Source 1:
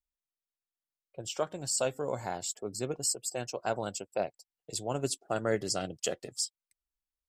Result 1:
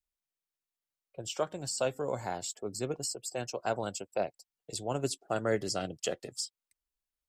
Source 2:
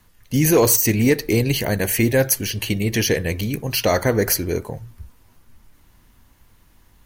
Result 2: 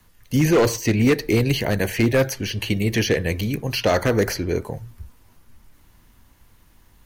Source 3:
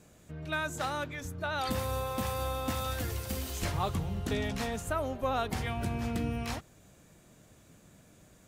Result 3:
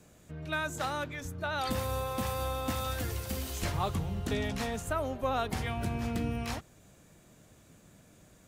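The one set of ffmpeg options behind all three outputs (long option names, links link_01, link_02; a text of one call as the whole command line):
ffmpeg -i in.wav -filter_complex "[0:a]acrossover=split=390|1200|5100[link_01][link_02][link_03][link_04];[link_04]acompressor=threshold=-38dB:ratio=6[link_05];[link_01][link_02][link_03][link_05]amix=inputs=4:normalize=0,aeval=exprs='0.316*(abs(mod(val(0)/0.316+3,4)-2)-1)':channel_layout=same" out.wav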